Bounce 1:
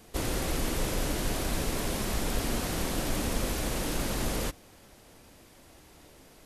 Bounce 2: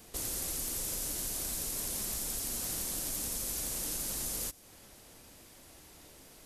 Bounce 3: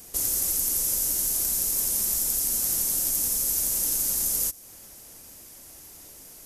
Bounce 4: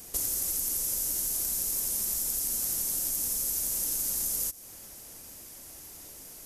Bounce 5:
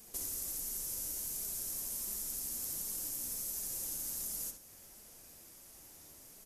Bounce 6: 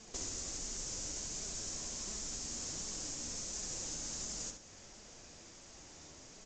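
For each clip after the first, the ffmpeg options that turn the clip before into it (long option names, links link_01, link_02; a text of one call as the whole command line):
ffmpeg -i in.wav -filter_complex "[0:a]highshelf=frequency=4100:gain=8.5,acrossover=split=5200[link_01][link_02];[link_01]acompressor=threshold=-40dB:ratio=4[link_03];[link_03][link_02]amix=inputs=2:normalize=0,volume=-3dB" out.wav
ffmpeg -i in.wav -af "aexciter=amount=2.3:drive=6.7:freq=5300,volume=2dB" out.wav
ffmpeg -i in.wav -af "acompressor=threshold=-27dB:ratio=6" out.wav
ffmpeg -i in.wav -filter_complex "[0:a]flanger=delay=4.6:depth=8.3:regen=39:speed=1.4:shape=sinusoidal,asplit=2[link_01][link_02];[link_02]adelay=67,lowpass=frequency=3600:poles=1,volume=-4dB,asplit=2[link_03][link_04];[link_04]adelay=67,lowpass=frequency=3600:poles=1,volume=0.4,asplit=2[link_05][link_06];[link_06]adelay=67,lowpass=frequency=3600:poles=1,volume=0.4,asplit=2[link_07][link_08];[link_08]adelay=67,lowpass=frequency=3600:poles=1,volume=0.4,asplit=2[link_09][link_10];[link_10]adelay=67,lowpass=frequency=3600:poles=1,volume=0.4[link_11];[link_01][link_03][link_05][link_07][link_09][link_11]amix=inputs=6:normalize=0,volume=-5.5dB" out.wav
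ffmpeg -i in.wav -af "volume=5.5dB" -ar 16000 -c:a pcm_alaw out.wav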